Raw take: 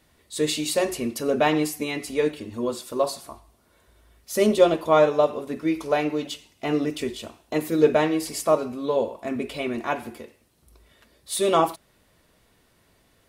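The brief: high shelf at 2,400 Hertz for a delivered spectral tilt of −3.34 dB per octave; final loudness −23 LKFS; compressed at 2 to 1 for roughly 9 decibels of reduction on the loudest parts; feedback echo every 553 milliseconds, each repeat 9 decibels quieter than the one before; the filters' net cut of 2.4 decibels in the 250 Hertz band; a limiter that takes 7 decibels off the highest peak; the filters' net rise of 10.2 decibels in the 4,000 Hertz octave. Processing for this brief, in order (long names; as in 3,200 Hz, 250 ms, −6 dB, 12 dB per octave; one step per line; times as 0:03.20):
parametric band 250 Hz −3.5 dB
high-shelf EQ 2,400 Hz +8 dB
parametric band 4,000 Hz +5.5 dB
downward compressor 2 to 1, threshold −28 dBFS
brickwall limiter −18.5 dBFS
repeating echo 553 ms, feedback 35%, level −9 dB
level +7 dB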